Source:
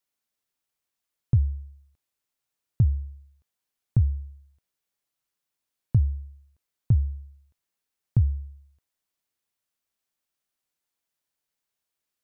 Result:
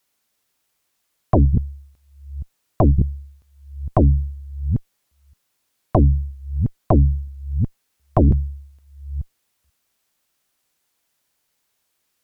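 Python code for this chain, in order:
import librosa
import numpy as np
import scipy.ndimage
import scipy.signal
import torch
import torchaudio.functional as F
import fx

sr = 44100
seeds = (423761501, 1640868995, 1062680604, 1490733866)

y = fx.reverse_delay(x, sr, ms=485, wet_db=-13.0)
y = fx.cheby_harmonics(y, sr, harmonics=(3, 5, 8), levels_db=(-9, -7, -10), full_scale_db=-11.0)
y = y * librosa.db_to_amplitude(6.5)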